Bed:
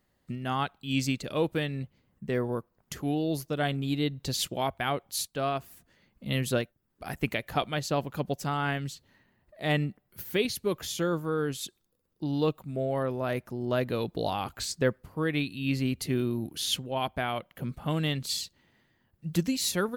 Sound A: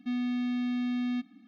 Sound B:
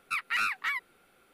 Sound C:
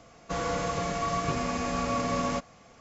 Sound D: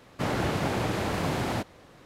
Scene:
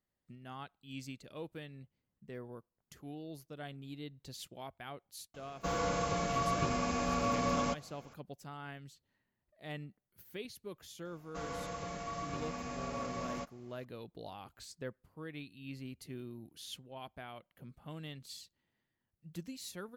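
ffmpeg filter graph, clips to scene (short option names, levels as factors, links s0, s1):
-filter_complex "[3:a]asplit=2[s0][s1];[0:a]volume=0.141[s2];[s0]bandreject=f=1900:w=12,atrim=end=2.8,asetpts=PTS-STARTPTS,volume=0.668,afade=t=in:d=0.004:c=hsin,afade=t=out:st=2.796:d=0.004:c=hsin,adelay=5340[s3];[s1]atrim=end=2.8,asetpts=PTS-STARTPTS,volume=0.266,afade=t=in:d=0.004:c=hsin,afade=t=out:st=2.796:d=0.004:c=hsin,adelay=11050[s4];[s2][s3][s4]amix=inputs=3:normalize=0"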